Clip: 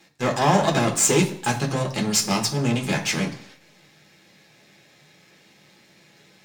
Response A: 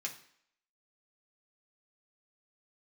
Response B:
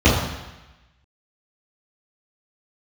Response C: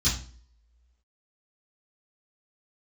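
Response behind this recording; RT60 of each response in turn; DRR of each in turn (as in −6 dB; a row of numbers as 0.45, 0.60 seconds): A; 0.65 s, 1.0 s, non-exponential decay; −1.0, −13.5, −13.5 decibels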